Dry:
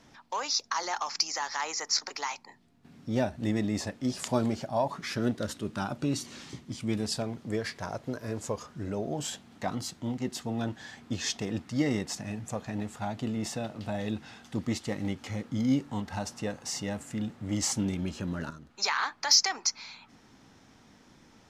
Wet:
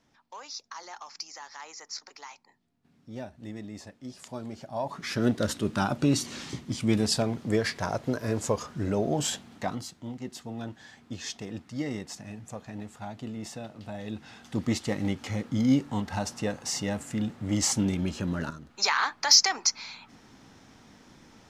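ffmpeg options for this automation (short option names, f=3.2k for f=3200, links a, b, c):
-af "volume=14.5dB,afade=t=in:st=4.44:d=0.37:silence=0.446684,afade=t=in:st=4.81:d=0.67:silence=0.316228,afade=t=out:st=9.32:d=0.58:silence=0.281838,afade=t=in:st=14.04:d=0.64:silence=0.375837"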